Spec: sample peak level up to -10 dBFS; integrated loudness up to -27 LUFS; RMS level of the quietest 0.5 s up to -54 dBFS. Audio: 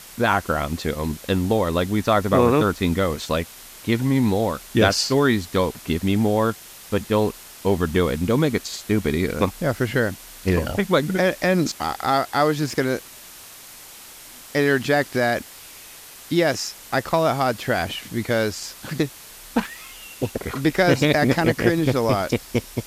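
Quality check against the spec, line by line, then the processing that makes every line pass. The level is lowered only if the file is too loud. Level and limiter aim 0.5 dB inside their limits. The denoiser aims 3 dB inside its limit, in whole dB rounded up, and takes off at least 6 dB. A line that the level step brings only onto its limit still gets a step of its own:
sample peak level -3.5 dBFS: fail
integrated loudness -22.0 LUFS: fail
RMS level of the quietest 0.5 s -42 dBFS: fail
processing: denoiser 10 dB, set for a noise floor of -42 dBFS; gain -5.5 dB; limiter -10.5 dBFS

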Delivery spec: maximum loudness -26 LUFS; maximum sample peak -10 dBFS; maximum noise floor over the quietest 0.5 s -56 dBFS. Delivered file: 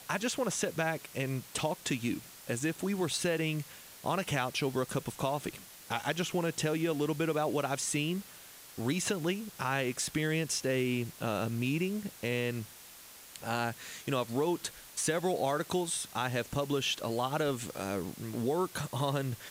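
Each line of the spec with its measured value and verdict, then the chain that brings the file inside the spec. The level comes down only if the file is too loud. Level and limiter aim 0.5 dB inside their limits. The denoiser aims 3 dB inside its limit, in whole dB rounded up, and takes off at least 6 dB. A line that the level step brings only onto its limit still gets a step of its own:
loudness -33.0 LUFS: OK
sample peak -16.0 dBFS: OK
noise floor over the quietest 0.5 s -52 dBFS: fail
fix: denoiser 7 dB, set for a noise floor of -52 dBFS

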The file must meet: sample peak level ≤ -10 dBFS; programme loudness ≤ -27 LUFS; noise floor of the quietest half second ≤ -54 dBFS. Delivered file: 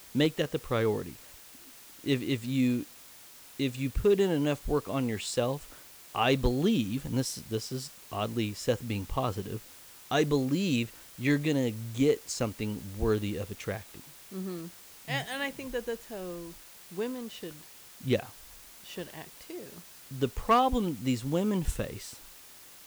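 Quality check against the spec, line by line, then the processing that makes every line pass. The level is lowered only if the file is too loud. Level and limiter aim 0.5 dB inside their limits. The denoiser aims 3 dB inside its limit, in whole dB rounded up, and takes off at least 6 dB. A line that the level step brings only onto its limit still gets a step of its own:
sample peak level -15.5 dBFS: OK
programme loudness -31.0 LUFS: OK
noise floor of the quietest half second -51 dBFS: fail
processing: denoiser 6 dB, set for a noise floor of -51 dBFS

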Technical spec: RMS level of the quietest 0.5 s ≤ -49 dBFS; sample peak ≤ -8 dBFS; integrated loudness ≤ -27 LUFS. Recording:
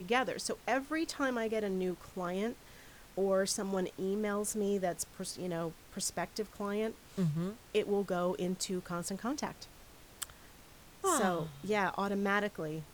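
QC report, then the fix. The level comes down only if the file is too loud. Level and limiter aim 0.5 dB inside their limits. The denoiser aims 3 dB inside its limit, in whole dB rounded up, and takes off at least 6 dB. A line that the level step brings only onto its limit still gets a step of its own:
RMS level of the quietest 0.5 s -56 dBFS: OK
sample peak -17.5 dBFS: OK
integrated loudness -35.0 LUFS: OK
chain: none

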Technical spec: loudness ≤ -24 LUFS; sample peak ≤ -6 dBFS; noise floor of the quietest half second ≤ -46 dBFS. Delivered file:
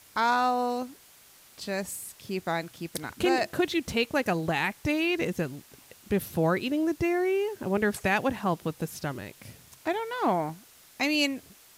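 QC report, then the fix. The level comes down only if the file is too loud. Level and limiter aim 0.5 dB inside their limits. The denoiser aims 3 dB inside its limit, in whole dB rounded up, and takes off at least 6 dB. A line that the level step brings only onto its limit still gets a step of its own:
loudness -28.5 LUFS: OK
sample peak -10.5 dBFS: OK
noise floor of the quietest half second -55 dBFS: OK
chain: none

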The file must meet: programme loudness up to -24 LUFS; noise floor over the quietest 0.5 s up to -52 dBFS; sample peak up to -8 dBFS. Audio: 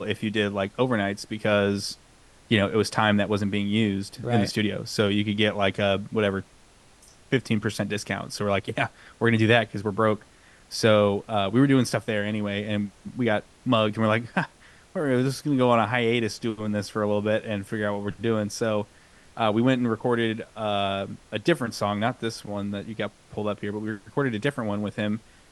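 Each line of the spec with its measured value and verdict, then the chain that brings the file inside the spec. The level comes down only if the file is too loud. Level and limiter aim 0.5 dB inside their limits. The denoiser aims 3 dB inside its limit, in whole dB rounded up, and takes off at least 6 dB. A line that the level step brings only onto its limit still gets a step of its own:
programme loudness -25.5 LUFS: OK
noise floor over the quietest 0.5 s -54 dBFS: OK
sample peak -5.5 dBFS: fail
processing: limiter -8.5 dBFS

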